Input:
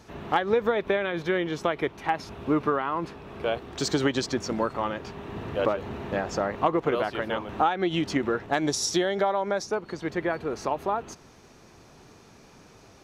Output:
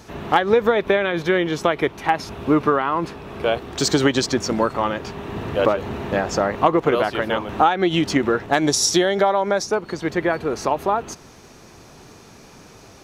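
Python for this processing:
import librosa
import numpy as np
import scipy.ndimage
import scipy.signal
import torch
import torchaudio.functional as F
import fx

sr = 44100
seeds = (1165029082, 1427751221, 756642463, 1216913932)

y = fx.high_shelf(x, sr, hz=7200.0, db=5.5)
y = F.gain(torch.from_numpy(y), 7.0).numpy()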